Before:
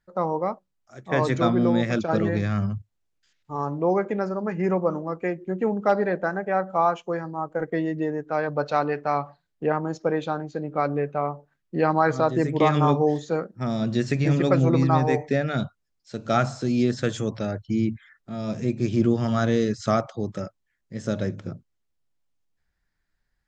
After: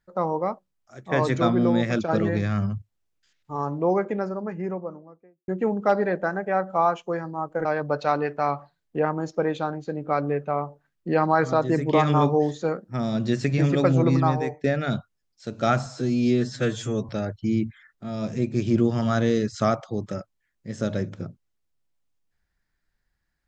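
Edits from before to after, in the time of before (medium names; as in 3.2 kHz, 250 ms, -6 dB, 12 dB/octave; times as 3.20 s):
3.86–5.48 s: studio fade out
7.65–8.32 s: delete
14.87–15.31 s: fade out, to -14.5 dB
16.53–17.35 s: stretch 1.5×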